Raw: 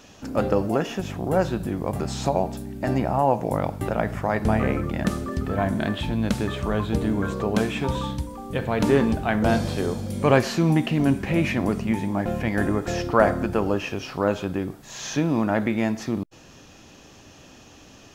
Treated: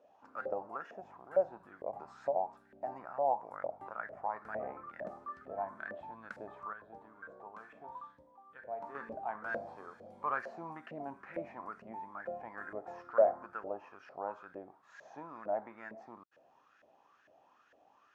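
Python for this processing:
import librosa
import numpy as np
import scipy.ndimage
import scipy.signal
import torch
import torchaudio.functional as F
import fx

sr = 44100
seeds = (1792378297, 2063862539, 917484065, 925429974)

y = fx.dynamic_eq(x, sr, hz=3200.0, q=1.8, threshold_db=-49.0, ratio=4.0, max_db=-8)
y = fx.filter_lfo_bandpass(y, sr, shape='saw_up', hz=2.2, low_hz=550.0, high_hz=1700.0, q=6.3)
y = fx.comb_fb(y, sr, f0_hz=53.0, decay_s=0.7, harmonics='odd', damping=0.0, mix_pct=60, at=(6.73, 8.95))
y = y * 10.0 ** (-3.5 / 20.0)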